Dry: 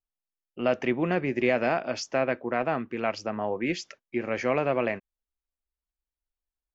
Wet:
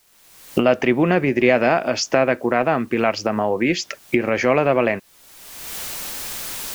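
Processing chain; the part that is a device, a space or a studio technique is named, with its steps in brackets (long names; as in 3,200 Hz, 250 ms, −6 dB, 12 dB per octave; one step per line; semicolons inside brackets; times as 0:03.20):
cheap recorder with automatic gain (white noise bed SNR 39 dB; camcorder AGC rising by 36 dB per second)
level +8.5 dB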